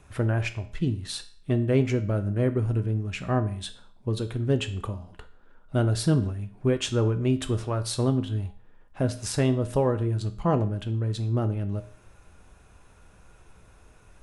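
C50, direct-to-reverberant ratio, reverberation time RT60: 14.5 dB, 8.5 dB, 0.50 s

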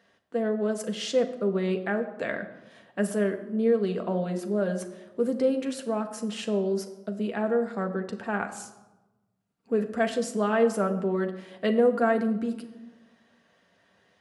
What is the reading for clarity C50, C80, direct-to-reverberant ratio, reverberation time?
11.5 dB, 13.5 dB, 4.5 dB, 1.1 s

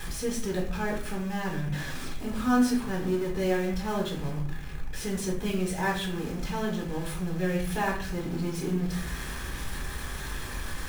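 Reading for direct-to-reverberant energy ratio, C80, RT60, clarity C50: -2.0 dB, 9.5 dB, 0.55 s, 5.5 dB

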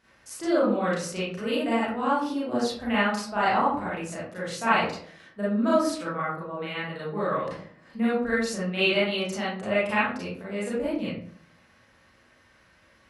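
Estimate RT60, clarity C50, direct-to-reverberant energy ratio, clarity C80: 0.55 s, -0.5 dB, -9.0 dB, 6.0 dB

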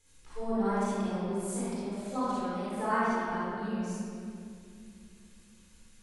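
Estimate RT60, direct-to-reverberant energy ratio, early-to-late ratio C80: 2.5 s, -10.5 dB, -3.5 dB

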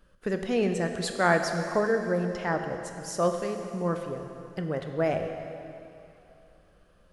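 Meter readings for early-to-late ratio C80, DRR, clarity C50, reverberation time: 7.0 dB, 5.0 dB, 6.0 dB, 2.9 s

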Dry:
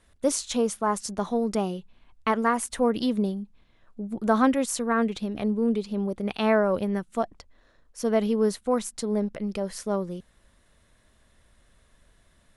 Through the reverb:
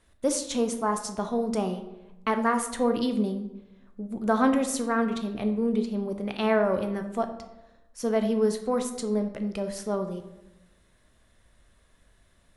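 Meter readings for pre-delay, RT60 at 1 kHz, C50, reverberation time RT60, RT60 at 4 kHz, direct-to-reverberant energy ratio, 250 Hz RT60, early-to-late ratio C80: 12 ms, 0.90 s, 9.5 dB, 0.95 s, 0.55 s, 6.5 dB, 1.1 s, 12.0 dB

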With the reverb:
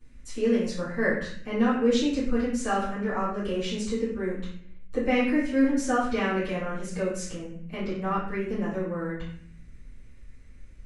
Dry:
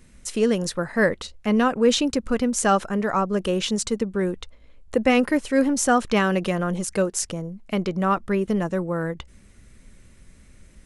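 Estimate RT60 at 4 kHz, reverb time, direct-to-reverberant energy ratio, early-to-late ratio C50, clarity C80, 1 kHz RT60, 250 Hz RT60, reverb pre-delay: 0.50 s, 0.55 s, -15.5 dB, 2.0 dB, 6.0 dB, 0.55 s, 0.90 s, 7 ms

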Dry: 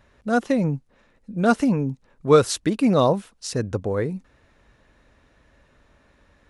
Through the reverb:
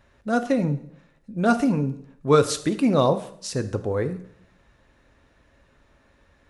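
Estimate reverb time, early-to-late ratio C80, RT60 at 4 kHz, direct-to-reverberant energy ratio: 0.65 s, 17.0 dB, 0.65 s, 9.5 dB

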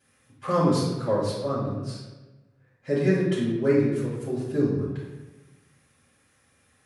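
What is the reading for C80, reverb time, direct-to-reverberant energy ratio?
3.5 dB, 1.2 s, -10.0 dB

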